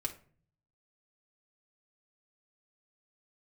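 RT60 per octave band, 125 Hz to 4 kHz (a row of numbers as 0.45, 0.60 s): 1.0, 0.65, 0.50, 0.40, 0.40, 0.25 s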